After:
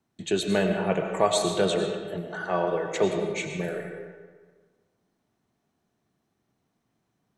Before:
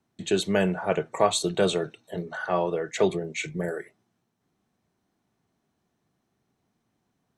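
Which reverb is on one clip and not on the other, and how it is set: algorithmic reverb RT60 1.5 s, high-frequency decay 0.65×, pre-delay 60 ms, DRR 4 dB; trim -1.5 dB

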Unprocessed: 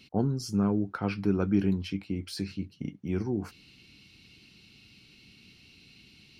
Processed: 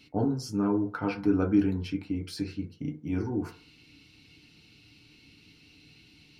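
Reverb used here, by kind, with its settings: FDN reverb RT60 0.4 s, low-frequency decay 0.75×, high-frequency decay 0.25×, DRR 1 dB; trim -2 dB

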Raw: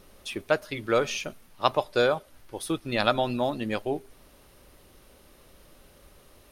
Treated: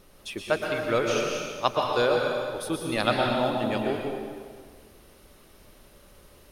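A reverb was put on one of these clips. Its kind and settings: plate-style reverb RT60 1.7 s, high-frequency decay 0.9×, pre-delay 105 ms, DRR 0 dB; trim -1.5 dB

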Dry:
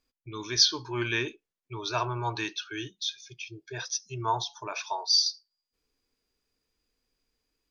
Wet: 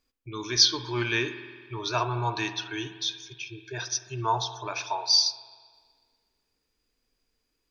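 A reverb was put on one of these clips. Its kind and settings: spring tank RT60 1.7 s, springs 49 ms, chirp 80 ms, DRR 10.5 dB; trim +2 dB

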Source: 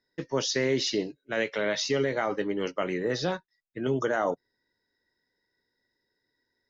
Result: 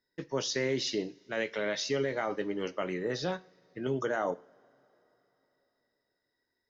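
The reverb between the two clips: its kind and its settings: two-slope reverb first 0.4 s, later 3.8 s, from -22 dB, DRR 15 dB; trim -4.5 dB

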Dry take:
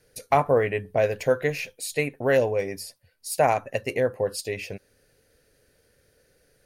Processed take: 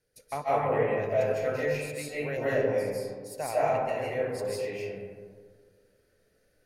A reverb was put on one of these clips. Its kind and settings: algorithmic reverb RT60 1.8 s, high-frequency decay 0.35×, pre-delay 115 ms, DRR -9.5 dB; trim -15 dB

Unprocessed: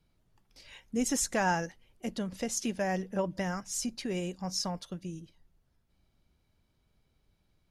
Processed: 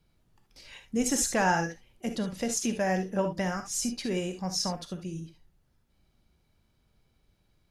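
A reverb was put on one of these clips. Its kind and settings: gated-style reverb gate 90 ms rising, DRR 6.5 dB; trim +2.5 dB

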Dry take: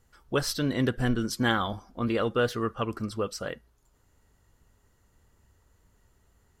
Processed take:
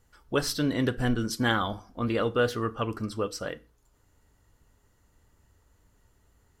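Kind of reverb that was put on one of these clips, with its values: FDN reverb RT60 0.34 s, low-frequency decay 1.25×, high-frequency decay 0.9×, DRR 13 dB

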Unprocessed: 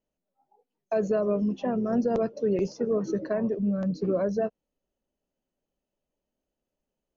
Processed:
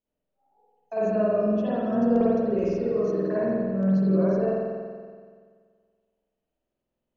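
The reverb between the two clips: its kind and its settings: spring tank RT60 1.8 s, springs 47 ms, chirp 40 ms, DRR -10 dB; trim -8 dB

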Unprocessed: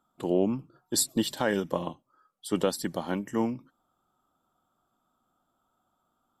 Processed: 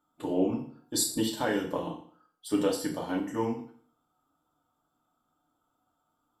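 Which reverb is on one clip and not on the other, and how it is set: FDN reverb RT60 0.52 s, low-frequency decay 1×, high-frequency decay 0.95×, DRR -2 dB; trim -5.5 dB

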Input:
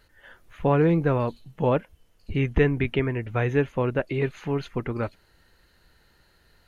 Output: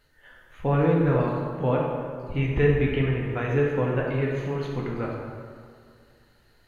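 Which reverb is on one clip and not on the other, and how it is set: plate-style reverb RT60 2.1 s, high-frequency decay 0.6×, DRR -2.5 dB; trim -5 dB

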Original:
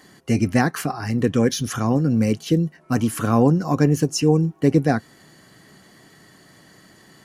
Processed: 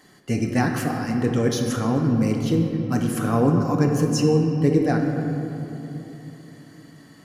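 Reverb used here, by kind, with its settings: simulated room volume 170 m³, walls hard, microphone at 0.36 m; trim -4 dB

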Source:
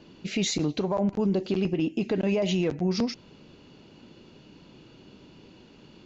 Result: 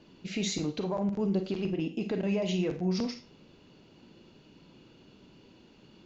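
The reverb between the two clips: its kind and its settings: Schroeder reverb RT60 0.3 s, combs from 33 ms, DRR 7.5 dB; trim -5.5 dB

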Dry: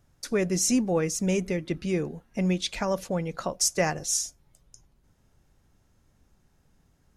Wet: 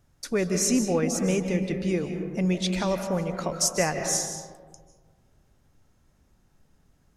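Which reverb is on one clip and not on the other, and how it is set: algorithmic reverb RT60 1.6 s, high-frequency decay 0.35×, pre-delay 115 ms, DRR 5.5 dB

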